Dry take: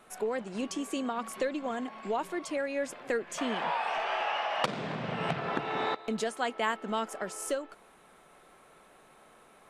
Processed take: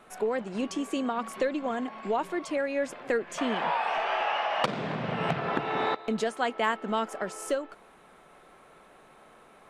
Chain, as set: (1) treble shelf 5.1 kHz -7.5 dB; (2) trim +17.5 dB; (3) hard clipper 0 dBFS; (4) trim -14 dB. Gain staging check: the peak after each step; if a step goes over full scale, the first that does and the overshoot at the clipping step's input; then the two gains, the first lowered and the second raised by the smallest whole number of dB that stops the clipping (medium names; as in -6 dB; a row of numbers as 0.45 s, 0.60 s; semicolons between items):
-14.0 dBFS, +3.5 dBFS, 0.0 dBFS, -14.0 dBFS; step 2, 3.5 dB; step 2 +13.5 dB, step 4 -10 dB